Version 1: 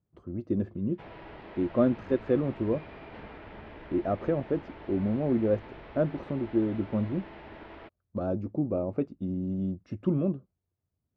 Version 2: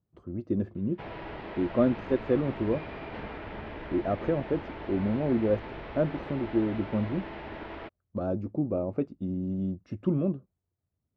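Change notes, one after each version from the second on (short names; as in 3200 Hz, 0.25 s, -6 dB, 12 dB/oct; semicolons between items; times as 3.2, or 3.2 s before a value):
background +6.0 dB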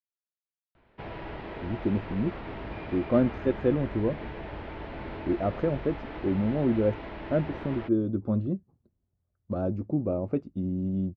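speech: entry +1.35 s; master: add low shelf 140 Hz +5 dB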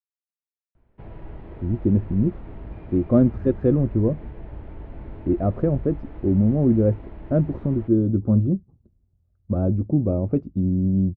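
background -9.0 dB; master: add tilt -3.5 dB/oct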